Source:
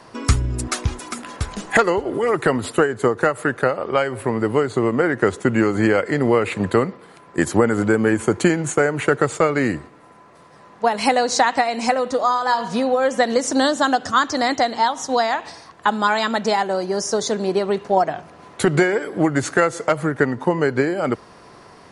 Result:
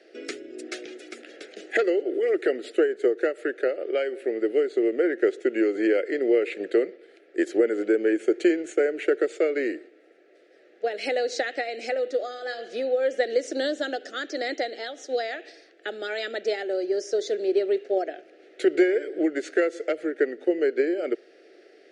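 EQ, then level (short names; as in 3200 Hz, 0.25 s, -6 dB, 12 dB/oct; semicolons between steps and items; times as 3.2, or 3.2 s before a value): elliptic high-pass 340 Hz, stop band 80 dB; Butterworth band-stop 1000 Hz, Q 0.78; tape spacing loss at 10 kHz 22 dB; 0.0 dB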